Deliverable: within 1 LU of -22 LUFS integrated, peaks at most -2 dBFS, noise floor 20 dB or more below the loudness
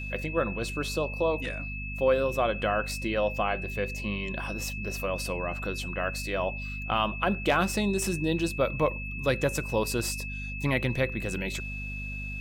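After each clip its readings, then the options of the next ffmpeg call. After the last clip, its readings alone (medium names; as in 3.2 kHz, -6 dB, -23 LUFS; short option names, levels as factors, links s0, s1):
hum 50 Hz; highest harmonic 250 Hz; hum level -35 dBFS; steady tone 2.6 kHz; tone level -37 dBFS; loudness -29.5 LUFS; peak level -12.0 dBFS; loudness target -22.0 LUFS
-> -af "bandreject=f=50:t=h:w=4,bandreject=f=100:t=h:w=4,bandreject=f=150:t=h:w=4,bandreject=f=200:t=h:w=4,bandreject=f=250:t=h:w=4"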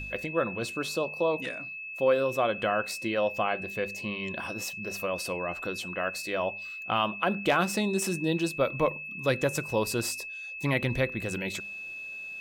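hum not found; steady tone 2.6 kHz; tone level -37 dBFS
-> -af "bandreject=f=2600:w=30"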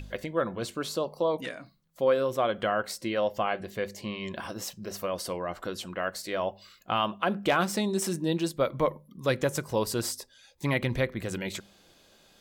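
steady tone not found; loudness -30.5 LUFS; peak level -13.0 dBFS; loudness target -22.0 LUFS
-> -af "volume=2.66"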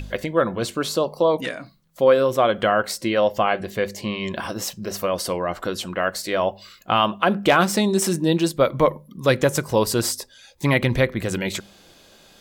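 loudness -22.0 LUFS; peak level -4.5 dBFS; noise floor -52 dBFS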